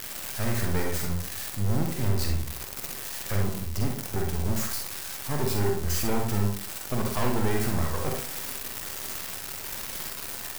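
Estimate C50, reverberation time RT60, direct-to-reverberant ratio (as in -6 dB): 3.5 dB, 0.50 s, 1.0 dB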